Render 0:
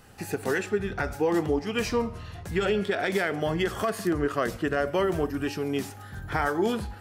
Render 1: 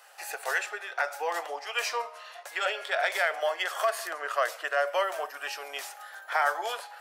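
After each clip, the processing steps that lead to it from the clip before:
elliptic high-pass filter 590 Hz, stop band 80 dB
level +2.5 dB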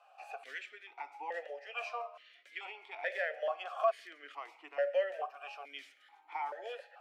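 formant filter that steps through the vowels 2.3 Hz
level +2 dB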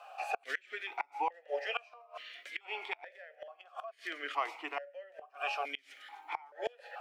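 gate with flip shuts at −33 dBFS, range −28 dB
level +11.5 dB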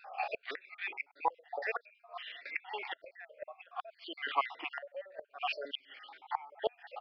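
time-frequency cells dropped at random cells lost 53%
downsampling to 11,025 Hz
level +4 dB

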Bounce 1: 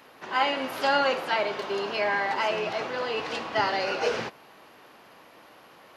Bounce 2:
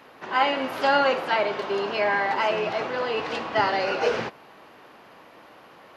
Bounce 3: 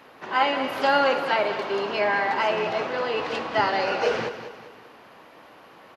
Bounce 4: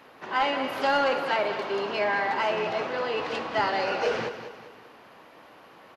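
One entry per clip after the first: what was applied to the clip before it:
high-shelf EQ 4,300 Hz −8.5 dB; level +3.5 dB
repeating echo 197 ms, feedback 42%, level −11 dB
soft clipping −13 dBFS, distortion −21 dB; level −2 dB

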